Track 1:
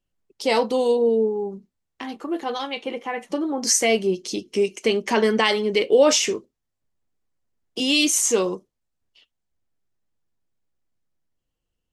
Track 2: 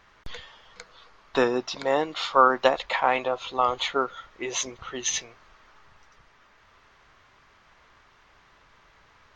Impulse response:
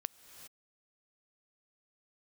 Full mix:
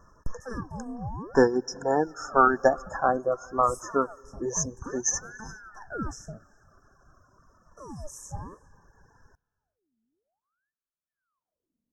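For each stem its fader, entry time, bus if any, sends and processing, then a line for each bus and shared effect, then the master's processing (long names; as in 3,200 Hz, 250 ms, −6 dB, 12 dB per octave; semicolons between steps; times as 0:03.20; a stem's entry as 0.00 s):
−7.5 dB, 0.00 s, send −23.5 dB, high-shelf EQ 3,900 Hz −6 dB; ring modulator whose carrier an LFO sweeps 1,100 Hz, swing 80%, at 0.55 Hz; automatic ducking −10 dB, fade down 0.85 s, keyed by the second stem
+0.5 dB, 0.00 s, send −11 dB, reverb reduction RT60 1.6 s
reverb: on, pre-delay 3 ms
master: linear-phase brick-wall band-stop 1,800–5,100 Hz; low-shelf EQ 340 Hz +6.5 dB; phaser whose notches keep moving one way falling 0.26 Hz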